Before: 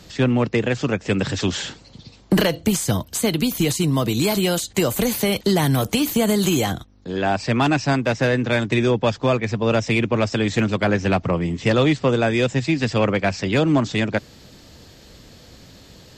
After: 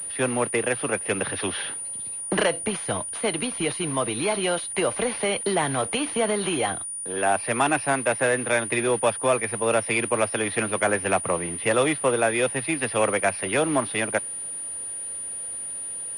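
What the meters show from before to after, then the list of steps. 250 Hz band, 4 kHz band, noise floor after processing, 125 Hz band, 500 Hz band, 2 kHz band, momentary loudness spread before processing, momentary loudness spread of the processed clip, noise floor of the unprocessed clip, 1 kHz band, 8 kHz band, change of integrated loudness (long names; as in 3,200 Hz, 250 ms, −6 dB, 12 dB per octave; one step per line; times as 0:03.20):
−9.5 dB, −5.5 dB, −33 dBFS, −13.5 dB, −2.5 dB, −1.0 dB, 4 LU, 8 LU, −47 dBFS, −0.5 dB, +5.0 dB, −4.0 dB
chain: noise that follows the level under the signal 19 dB
three-way crossover with the lows and the highs turned down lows −14 dB, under 390 Hz, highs −17 dB, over 3,700 Hz
switching amplifier with a slow clock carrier 9,500 Hz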